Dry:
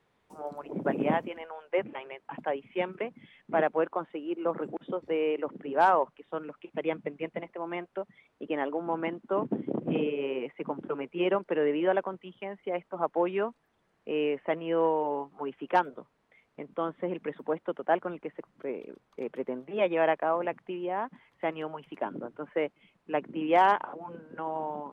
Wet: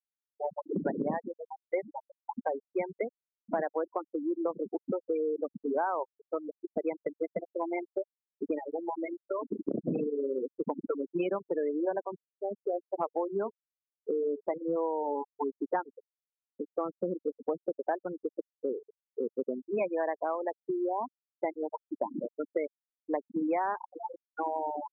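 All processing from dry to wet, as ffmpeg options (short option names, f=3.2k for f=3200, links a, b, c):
-filter_complex "[0:a]asettb=1/sr,asplit=3[a][b][c];[a]atrim=end=8.584[d];[b]atrim=start=8.58:end=9.65,asetpts=PTS-STARTPTS,afade=t=in:d=0.004:c=qsin,afade=t=out:st=1.066:d=0.004:c=qsin,lowpass=2k,aemphasis=mode=production:type=riaa,acompressor=threshold=-31dB:ratio=16:attack=3.2:release=140:knee=1:detection=peak[e];[c]atrim=start=9.646[f];[d][e]acrossfade=d=0.004:c1=hsin:c2=qsin[g];[g][f]acrossfade=d=0.004:c1=qsin:c2=hsin,asettb=1/sr,asplit=3[h][i][j];[h]atrim=end=11.804[k];[i]atrim=start=11.8:end=14.76,asetpts=PTS-STARTPTS,afade=t=in:d=0.004:c=qsin,afade=t=out:st=2.956:d=0.004:c=qsin,lowpass=1.9k,bandreject=f=60:t=h:w=6,bandreject=f=120:t=h:w=6,bandreject=f=180:t=h:w=6,bandreject=f=240:t=h:w=6,bandreject=f=300:t=h:w=6,bandreject=f=360:t=h:w=6,bandreject=f=420:t=h:w=6,bandreject=f=480:t=h:w=6[l];[j]atrim=start=14.756[m];[k][l]acrossfade=d=0.004:c1=hsin:c2=qsin[n];[n][m]acrossfade=d=0.004:c1=qsin:c2=hsin,afftfilt=real='re*gte(hypot(re,im),0.0708)':imag='im*gte(hypot(re,im),0.0708)':win_size=1024:overlap=0.75,acompressor=threshold=-36dB:ratio=6,volume=7.5dB"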